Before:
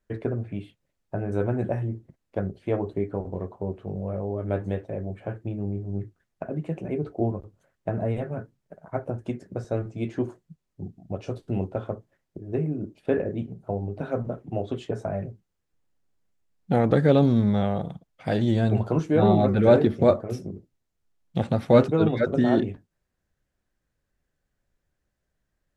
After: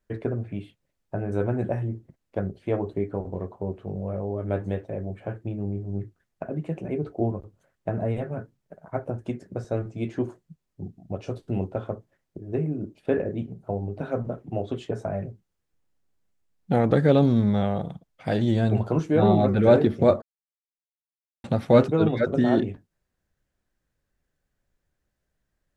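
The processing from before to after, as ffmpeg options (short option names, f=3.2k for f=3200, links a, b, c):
-filter_complex "[0:a]asplit=3[a][b][c];[a]atrim=end=20.22,asetpts=PTS-STARTPTS,afade=t=out:st=20.216:d=0.004:c=hsin[d];[b]atrim=start=20.22:end=21.44,asetpts=PTS-STARTPTS,volume=0[e];[c]atrim=start=21.44,asetpts=PTS-STARTPTS,afade=t=in:d=0.004:c=hsin[f];[d][e][f]concat=n=3:v=0:a=1"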